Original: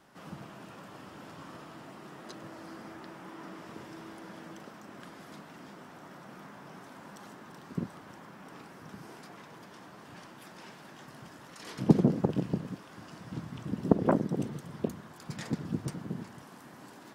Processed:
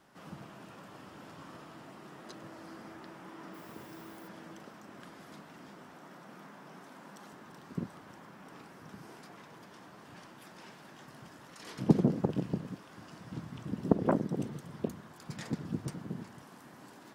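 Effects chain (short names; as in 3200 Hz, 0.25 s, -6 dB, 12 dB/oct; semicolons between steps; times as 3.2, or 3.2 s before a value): 3.53–4.27 added noise violet -59 dBFS; 5.93–7.33 HPF 140 Hz 24 dB/oct; gain -2.5 dB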